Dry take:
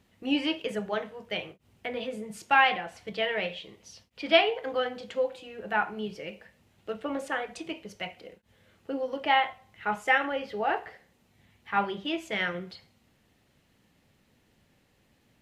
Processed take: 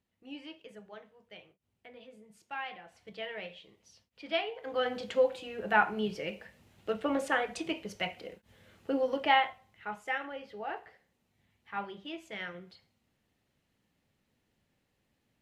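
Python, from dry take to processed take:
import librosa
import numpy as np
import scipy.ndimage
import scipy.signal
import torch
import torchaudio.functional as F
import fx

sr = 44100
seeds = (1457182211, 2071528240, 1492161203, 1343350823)

y = fx.gain(x, sr, db=fx.line((2.63, -18.0), (3.08, -11.0), (4.53, -11.0), (4.93, 2.0), (9.11, 2.0), (9.96, -10.5)))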